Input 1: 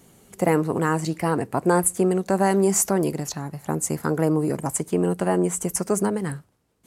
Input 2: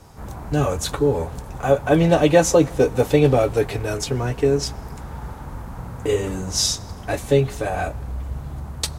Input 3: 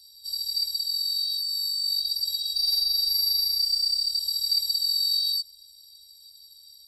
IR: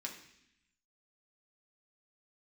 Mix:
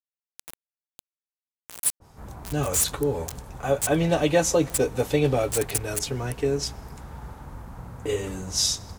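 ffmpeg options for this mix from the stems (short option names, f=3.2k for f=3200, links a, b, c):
-filter_complex "[0:a]aderivative,acrusher=bits=3:mix=0:aa=0.000001,asoftclip=type=tanh:threshold=-14dB,volume=-0.5dB[a];[1:a]adynamicequalizer=threshold=0.0158:dfrequency=1800:dqfactor=0.7:tfrequency=1800:tqfactor=0.7:attack=5:release=100:ratio=0.375:range=2:mode=boostabove:tftype=highshelf,adelay=2000,volume=-6.5dB[b];[a][b]amix=inputs=2:normalize=0"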